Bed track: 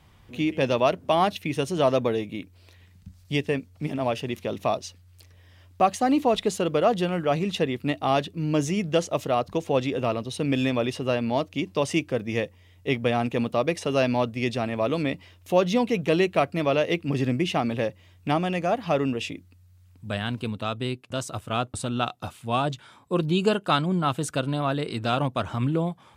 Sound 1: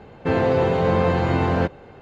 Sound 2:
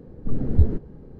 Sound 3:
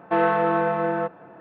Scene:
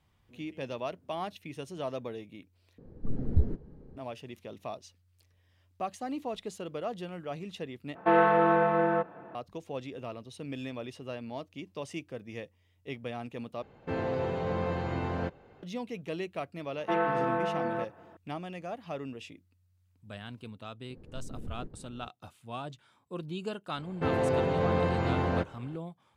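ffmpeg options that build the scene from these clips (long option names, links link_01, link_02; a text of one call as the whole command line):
ffmpeg -i bed.wav -i cue0.wav -i cue1.wav -i cue2.wav -filter_complex "[2:a]asplit=2[link_01][link_02];[3:a]asplit=2[link_03][link_04];[1:a]asplit=2[link_05][link_06];[0:a]volume=-14.5dB[link_07];[link_02]acompressor=threshold=-26dB:ratio=6:attack=3.2:release=140:knee=1:detection=peak[link_08];[link_07]asplit=4[link_09][link_10][link_11][link_12];[link_09]atrim=end=2.784[link_13];[link_01]atrim=end=1.19,asetpts=PTS-STARTPTS,volume=-8dB[link_14];[link_10]atrim=start=3.966:end=7.954[link_15];[link_03]atrim=end=1.4,asetpts=PTS-STARTPTS,volume=-2dB[link_16];[link_11]atrim=start=9.346:end=13.624[link_17];[link_05]atrim=end=2.01,asetpts=PTS-STARTPTS,volume=-12.5dB[link_18];[link_12]atrim=start=15.626[link_19];[link_04]atrim=end=1.4,asetpts=PTS-STARTPTS,volume=-8dB,afade=type=in:duration=0.004:curve=hsin,afade=type=out:start_time=1.396:duration=0.004:curve=hsin,adelay=16770[link_20];[link_08]atrim=end=1.19,asetpts=PTS-STARTPTS,volume=-9.5dB,afade=type=in:duration=0.004:curve=hsin,afade=type=out:start_time=1.186:duration=0.004:curve=hsin,adelay=20900[link_21];[link_06]atrim=end=2.01,asetpts=PTS-STARTPTS,volume=-8.5dB,afade=type=in:duration=0.004:curve=hsin,afade=type=out:start_time=2.006:duration=0.004:curve=hsin,adelay=23760[link_22];[link_13][link_14]acrossfade=duration=0.004:curve1=hsin:curve2=hsin[link_23];[link_23][link_15]acrossfade=duration=0.004:curve1=hsin:curve2=hsin[link_24];[link_24][link_16]acrossfade=duration=0.004:curve1=hsin:curve2=hsin[link_25];[link_25][link_17]acrossfade=duration=0.004:curve1=hsin:curve2=hsin[link_26];[link_26][link_18]acrossfade=duration=0.004:curve1=hsin:curve2=hsin[link_27];[link_27][link_19]acrossfade=duration=0.004:curve1=hsin:curve2=hsin[link_28];[link_28][link_20][link_21][link_22]amix=inputs=4:normalize=0" out.wav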